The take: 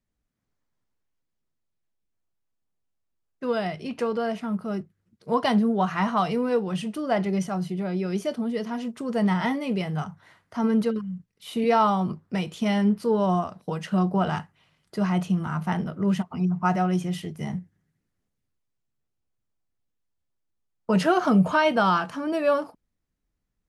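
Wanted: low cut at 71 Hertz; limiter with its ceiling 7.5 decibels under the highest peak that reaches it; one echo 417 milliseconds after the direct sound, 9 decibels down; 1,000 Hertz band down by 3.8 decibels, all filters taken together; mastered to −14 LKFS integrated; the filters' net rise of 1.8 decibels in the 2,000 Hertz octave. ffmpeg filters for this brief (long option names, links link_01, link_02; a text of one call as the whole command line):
ffmpeg -i in.wav -af "highpass=71,equalizer=frequency=1000:width_type=o:gain=-6.5,equalizer=frequency=2000:width_type=o:gain=5,alimiter=limit=-17.5dB:level=0:latency=1,aecho=1:1:417:0.355,volume=13.5dB" out.wav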